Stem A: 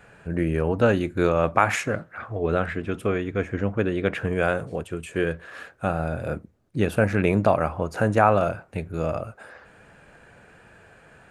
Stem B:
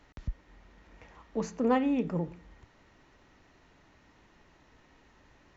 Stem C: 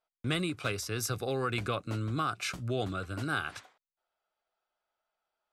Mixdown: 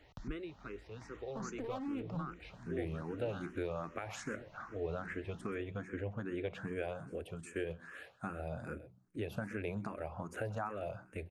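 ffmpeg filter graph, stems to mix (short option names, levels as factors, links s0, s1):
-filter_complex "[0:a]bandreject=f=61.47:t=h:w=4,bandreject=f=122.94:t=h:w=4,bandreject=f=184.41:t=h:w=4,bandreject=f=245.88:t=h:w=4,bandreject=f=307.35:t=h:w=4,bandreject=f=368.82:t=h:w=4,acompressor=threshold=0.0631:ratio=6,adelay=2400,volume=0.376,asplit=2[s0][s1];[s1]volume=0.15[s2];[1:a]acompressor=threshold=0.0178:ratio=5,asoftclip=type=hard:threshold=0.0141,volume=1.19[s3];[2:a]lowpass=3100,equalizer=f=370:w=0.72:g=9.5,volume=0.168[s4];[s2]aecho=0:1:129:1[s5];[s0][s3][s4][s5]amix=inputs=4:normalize=0,asplit=2[s6][s7];[s7]afreqshift=2.5[s8];[s6][s8]amix=inputs=2:normalize=1"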